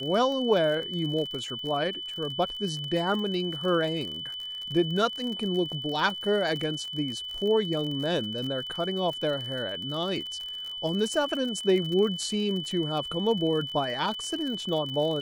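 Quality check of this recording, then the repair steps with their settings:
crackle 47/s -33 dBFS
tone 3000 Hz -34 dBFS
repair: de-click; notch 3000 Hz, Q 30

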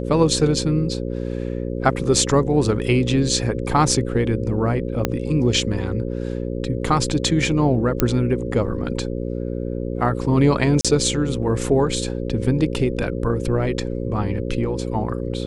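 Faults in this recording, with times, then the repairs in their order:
buzz 60 Hz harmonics 9 -26 dBFS
5.05 pop -5 dBFS
8 pop -2 dBFS
10.81–10.85 gap 36 ms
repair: de-click; de-hum 60 Hz, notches 9; interpolate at 10.81, 36 ms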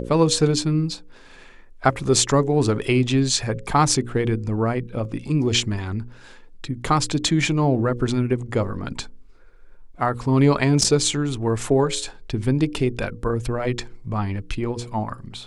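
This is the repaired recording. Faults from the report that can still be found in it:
5.05 pop

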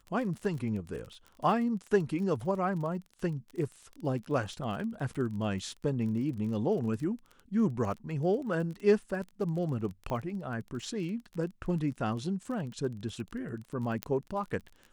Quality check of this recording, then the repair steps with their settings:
crackle 27/s -38 dBFS
10.1 pop -24 dBFS
14.03 pop -16 dBFS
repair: de-click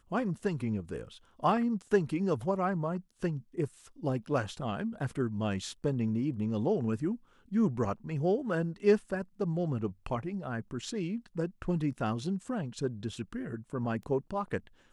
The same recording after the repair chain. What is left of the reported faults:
10.1 pop
14.03 pop

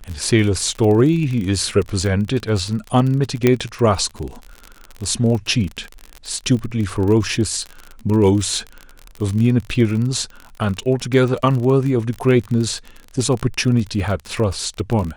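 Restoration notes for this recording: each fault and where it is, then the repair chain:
crackle 40/s -23 dBFS
3.47 pop -2 dBFS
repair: de-click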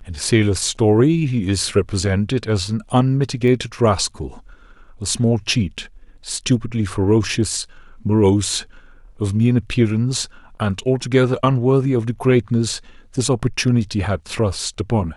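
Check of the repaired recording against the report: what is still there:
3.47 pop

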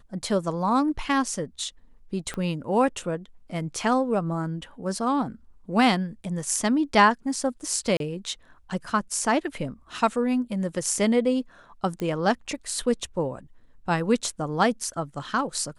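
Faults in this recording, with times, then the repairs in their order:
2.34 pop -18 dBFS
7.97–8 gap 32 ms
12 pop -19 dBFS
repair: de-click; interpolate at 7.97, 32 ms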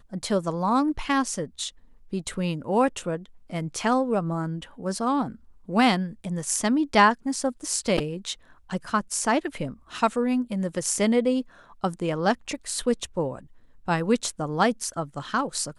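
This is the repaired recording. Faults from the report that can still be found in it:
2.34 pop

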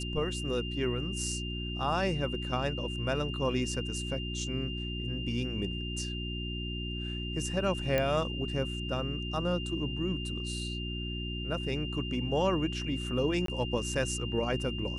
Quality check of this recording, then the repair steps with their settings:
hum 60 Hz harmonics 6 -37 dBFS
tone 2800 Hz -39 dBFS
7.98 pop -15 dBFS
13.46–13.48 gap 23 ms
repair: de-click; notch 2800 Hz, Q 30; de-hum 60 Hz, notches 6; interpolate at 13.46, 23 ms

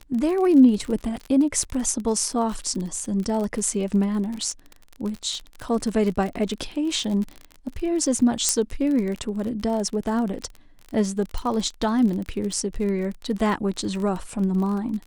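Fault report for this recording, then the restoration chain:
crackle 35/s -28 dBFS
8.49 pop -5 dBFS
11.38 pop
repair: de-click

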